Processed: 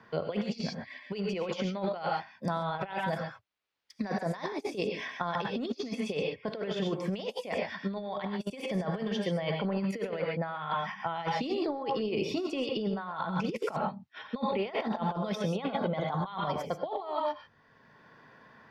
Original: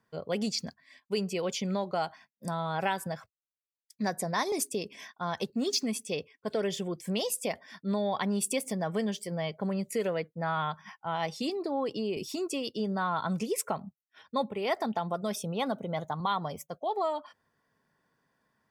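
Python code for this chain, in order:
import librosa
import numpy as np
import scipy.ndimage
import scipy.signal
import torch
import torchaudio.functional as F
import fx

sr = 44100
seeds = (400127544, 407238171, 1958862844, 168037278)

y = fx.tilt_eq(x, sr, slope=1.5)
y = fx.rev_gated(y, sr, seeds[0], gate_ms=160, shape='rising', drr_db=5.5)
y = fx.over_compress(y, sr, threshold_db=-35.0, ratio=-0.5)
y = fx.air_absorb(y, sr, metres=270.0)
y = fx.band_squash(y, sr, depth_pct=40)
y = y * 10.0 ** (4.5 / 20.0)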